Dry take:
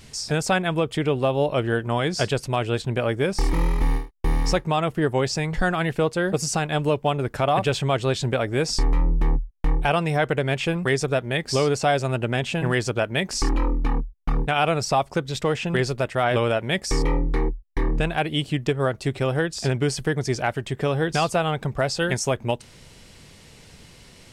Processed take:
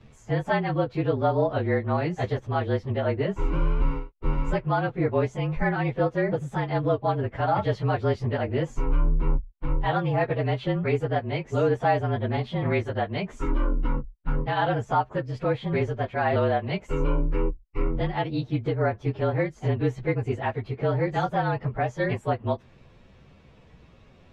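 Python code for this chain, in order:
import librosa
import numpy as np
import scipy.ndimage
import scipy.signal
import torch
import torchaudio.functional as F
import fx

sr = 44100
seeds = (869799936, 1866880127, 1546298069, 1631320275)

y = fx.partial_stretch(x, sr, pct=110)
y = scipy.signal.sosfilt(scipy.signal.butter(2, 2100.0, 'lowpass', fs=sr, output='sos'), y)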